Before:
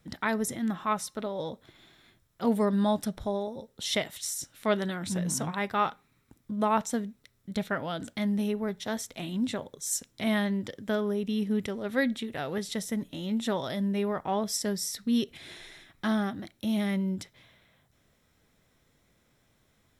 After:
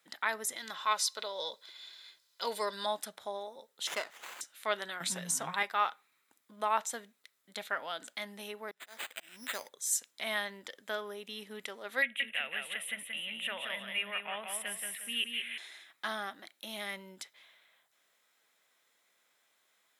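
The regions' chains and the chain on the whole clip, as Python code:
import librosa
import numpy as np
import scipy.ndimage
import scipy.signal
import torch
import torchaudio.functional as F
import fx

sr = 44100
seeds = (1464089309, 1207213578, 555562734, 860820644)

y = fx.chain(x, sr, fx.peak_eq(hz=4600.0, db=14.5, octaves=0.95),
    fx.comb(ms=2.0, depth=0.44), at=(0.56, 2.86))
y = fx.chain(y, sr, fx.air_absorb(metres=52.0),
    fx.running_max(window=9), at=(3.87, 4.41))
y = fx.chain(y, sr, fx.peak_eq(hz=170.0, db=13.5, octaves=0.56),
    fx.comb(ms=7.4, depth=0.32),
    fx.band_squash(depth_pct=70), at=(5.0, 5.63))
y = fx.chain(y, sr, fx.auto_swell(attack_ms=366.0),
    fx.high_shelf(hz=3400.0, db=9.0),
    fx.resample_bad(factor=8, down='none', up='hold'), at=(8.71, 9.69))
y = fx.chain(y, sr, fx.curve_eq(hz=(190.0, 380.0, 550.0, 890.0, 1300.0, 2800.0, 4600.0, 6800.0, 10000.0, 14000.0), db=(0, -12, -4, -9, -3, 14, -27, -22, 4, -12)),
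    fx.echo_feedback(ms=178, feedback_pct=34, wet_db=-4.5), at=(12.02, 15.58))
y = scipy.signal.sosfilt(scipy.signal.bessel(2, 1000.0, 'highpass', norm='mag', fs=sr, output='sos'), y)
y = fx.notch(y, sr, hz=5600.0, q=13.0)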